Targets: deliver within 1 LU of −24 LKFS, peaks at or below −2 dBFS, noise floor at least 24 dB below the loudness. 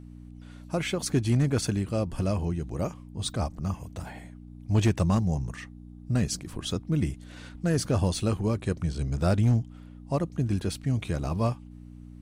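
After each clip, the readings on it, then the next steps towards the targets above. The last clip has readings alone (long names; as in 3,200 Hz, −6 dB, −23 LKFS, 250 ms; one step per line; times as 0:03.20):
share of clipped samples 0.4%; peaks flattened at −16.0 dBFS; mains hum 60 Hz; hum harmonics up to 300 Hz; level of the hum −45 dBFS; integrated loudness −28.5 LKFS; sample peak −16.0 dBFS; target loudness −24.0 LKFS
→ clipped peaks rebuilt −16 dBFS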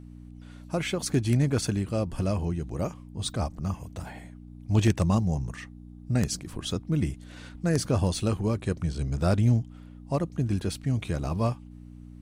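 share of clipped samples 0.0%; mains hum 60 Hz; hum harmonics up to 300 Hz; level of the hum −45 dBFS
→ hum removal 60 Hz, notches 5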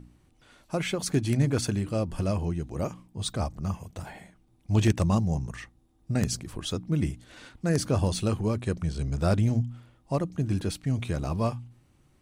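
mains hum none found; integrated loudness −28.5 LKFS; sample peak −7.0 dBFS; target loudness −24.0 LKFS
→ level +4.5 dB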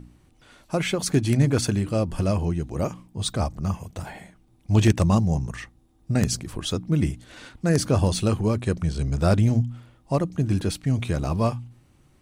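integrated loudness −24.0 LKFS; sample peak −2.5 dBFS; background noise floor −59 dBFS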